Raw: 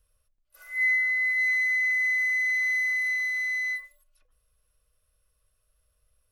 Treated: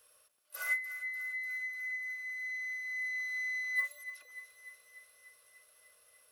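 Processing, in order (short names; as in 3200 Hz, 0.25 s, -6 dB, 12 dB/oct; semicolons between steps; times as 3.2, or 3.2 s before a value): HPF 420 Hz 12 dB/oct; negative-ratio compressor -38 dBFS, ratio -1; thinning echo 0.296 s, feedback 72%, high-pass 940 Hz, level -12.5 dB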